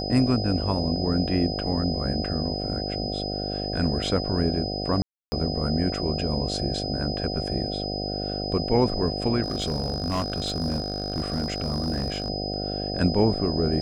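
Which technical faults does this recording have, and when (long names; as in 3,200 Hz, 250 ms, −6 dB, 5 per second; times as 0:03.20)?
mains buzz 50 Hz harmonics 15 −31 dBFS
whistle 5,000 Hz −32 dBFS
0:05.02–0:05.32: drop-out 300 ms
0:09.42–0:12.30: clipping −21.5 dBFS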